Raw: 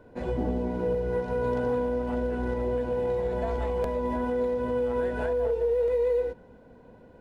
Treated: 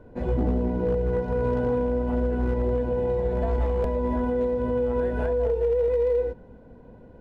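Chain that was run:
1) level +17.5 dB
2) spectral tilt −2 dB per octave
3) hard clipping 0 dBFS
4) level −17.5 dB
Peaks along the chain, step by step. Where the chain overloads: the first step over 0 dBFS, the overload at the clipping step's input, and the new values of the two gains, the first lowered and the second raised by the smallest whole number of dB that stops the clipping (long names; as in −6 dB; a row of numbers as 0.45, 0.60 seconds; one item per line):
−0.5, +4.0, 0.0, −17.5 dBFS
step 2, 4.0 dB
step 1 +13.5 dB, step 4 −13.5 dB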